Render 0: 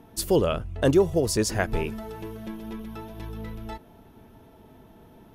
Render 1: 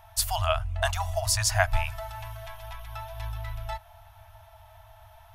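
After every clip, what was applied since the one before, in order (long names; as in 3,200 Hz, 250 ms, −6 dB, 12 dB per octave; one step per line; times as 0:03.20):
brick-wall band-stop 110–620 Hz
level +4 dB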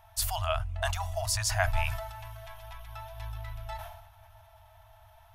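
level that may fall only so fast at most 52 dB per second
level −5 dB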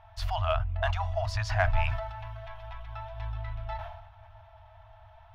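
high-frequency loss of the air 270 metres
in parallel at −5 dB: soft clipping −23.5 dBFS, distortion −15 dB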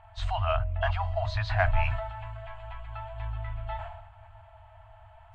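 hearing-aid frequency compression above 2,700 Hz 1.5 to 1
hum removal 157.1 Hz, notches 4
level +1 dB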